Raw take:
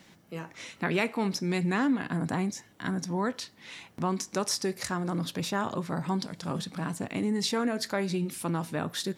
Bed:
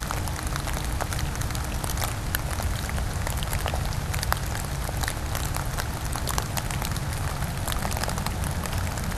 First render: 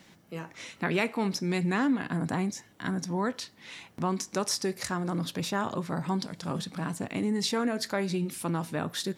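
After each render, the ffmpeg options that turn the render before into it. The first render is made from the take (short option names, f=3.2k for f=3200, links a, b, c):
-af anull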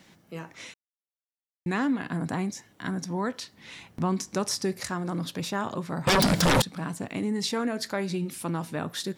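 -filter_complex "[0:a]asettb=1/sr,asplit=3[a][b][c];[a]atrim=end=3.544[d];[b]atrim=start=3.54:end=4.8,asetpts=PTS-STARTPTS,afade=t=in:d=0.004:c=qsin,afade=t=out:st=1.256:d=0.004:c=qsin,lowshelf=f=170:g=9[e];[c]atrim=start=4.796[f];[d][e]acrossfade=d=0.004:c1=hsin:c2=qsin[g];[g][f]acrossfade=d=0.004:c1=qsin:c2=hsin,asettb=1/sr,asplit=3[h][i][j];[h]atrim=end=6.074[k];[i]atrim=start=6.07:end=6.62,asetpts=PTS-STARTPTS,afade=t=in:d=0.004:c=qsin,afade=t=out:st=0.546:d=0.004:c=qsin,aeval=exprs='0.141*sin(PI/2*8.91*val(0)/0.141)':c=same[l];[j]atrim=start=6.616[m];[k][l]acrossfade=d=0.004:c1=hsin:c2=qsin[n];[n][m]acrossfade=d=0.004:c1=qsin:c2=hsin,asplit=3[o][p][q];[o]atrim=end=0.74,asetpts=PTS-STARTPTS,afade=t=out:st=0.736:d=0.004:c=hsin[r];[p]atrim=start=0.74:end=1.66,asetpts=PTS-STARTPTS,volume=0[s];[q]atrim=start=1.66,asetpts=PTS-STARTPTS,afade=t=in:d=0.004:c=hsin[t];[r][s][t]concat=n=3:v=0:a=1"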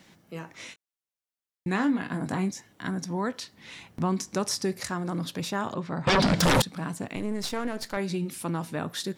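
-filter_complex "[0:a]asettb=1/sr,asplit=3[a][b][c];[a]atrim=end=0.524[d];[b]atrim=start=0.52:end=2.51,asetpts=PTS-STARTPTS,afade=t=in:d=0.004:c=qsin,afade=t=out:st=1.986:d=0.004:c=qsin,asplit=2[e][f];[f]adelay=21,volume=-8dB[g];[e][g]amix=inputs=2:normalize=0,atrim=end_sample=87759[h];[c]atrim=start=2.506[i];[d][h]acrossfade=d=0.004:c1=hsin:c2=qsin[j];[j][i]acrossfade=d=0.004:c1=qsin:c2=hsin,asettb=1/sr,asplit=3[k][l][m];[k]atrim=end=5.744[n];[l]atrim=start=5.74:end=6.4,asetpts=PTS-STARTPTS,afade=t=in:d=0.004:c=qsin,afade=t=out:st=0.656:d=0.004:c=qsin,lowpass=5k[o];[m]atrim=start=6.396[p];[n][o]acrossfade=d=0.004:c1=hsin:c2=qsin[q];[q][p]acrossfade=d=0.004:c1=qsin:c2=hsin,asettb=1/sr,asplit=3[r][s][t];[r]atrim=end=7.154[u];[s]atrim=start=7.15:end=7.97,asetpts=PTS-STARTPTS,afade=t=in:d=0.004:c=qsin,afade=t=out:st=0.816:d=0.004:c=qsin,aeval=exprs='if(lt(val(0),0),0.251*val(0),val(0))':c=same[v];[t]atrim=start=7.966[w];[u][v]acrossfade=d=0.004:c1=hsin:c2=qsin[x];[x][w]acrossfade=d=0.004:c1=qsin:c2=hsin"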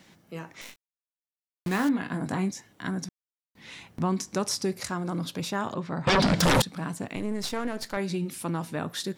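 -filter_complex "[0:a]asettb=1/sr,asplit=3[a][b][c];[a]atrim=end=0.614[d];[b]atrim=start=0.61:end=1.89,asetpts=PTS-STARTPTS,afade=t=in:d=0.004:c=qsin,afade=t=out:st=1.276:d=0.004:c=qsin,acrusher=bits=7:dc=4:mix=0:aa=0.000001[e];[c]atrim=start=1.886[f];[d][e]acrossfade=d=0.004:c1=hsin:c2=qsin[g];[g][f]acrossfade=d=0.004:c1=qsin:c2=hsin,asettb=1/sr,asplit=3[h][i][j];[h]atrim=end=4.464[k];[i]atrim=start=4.46:end=5.49,asetpts=PTS-STARTPTS,afade=t=in:d=0.004:c=qsin,afade=t=out:st=1.026:d=0.004:c=qsin,bandreject=f=1.8k:w=12[l];[j]atrim=start=5.486[m];[k][l]acrossfade=d=0.004:c1=hsin:c2=qsin[n];[n][m]acrossfade=d=0.004:c1=qsin:c2=hsin,asplit=3[o][p][q];[o]atrim=end=3.09,asetpts=PTS-STARTPTS,afade=t=out:st=3.086:d=0.004:c=hsin[r];[p]atrim=start=3.09:end=3.55,asetpts=PTS-STARTPTS,volume=0[s];[q]atrim=start=3.55,asetpts=PTS-STARTPTS,afade=t=in:d=0.004:c=hsin[t];[r][s][t]concat=n=3:v=0:a=1"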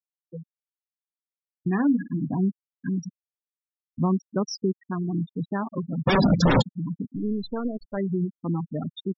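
-af "afftfilt=real='re*gte(hypot(re,im),0.1)':imag='im*gte(hypot(re,im),0.1)':win_size=1024:overlap=0.75,equalizer=f=180:w=0.56:g=5"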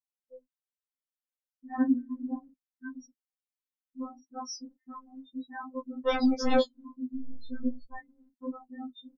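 -af "flanger=delay=8.5:depth=9.7:regen=-27:speed=0.37:shape=triangular,afftfilt=real='re*3.46*eq(mod(b,12),0)':imag='im*3.46*eq(mod(b,12),0)':win_size=2048:overlap=0.75"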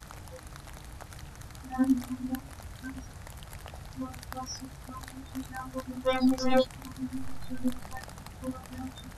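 -filter_complex "[1:a]volume=-17dB[a];[0:a][a]amix=inputs=2:normalize=0"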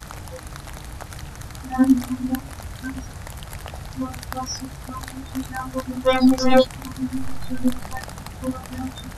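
-af "volume=9.5dB"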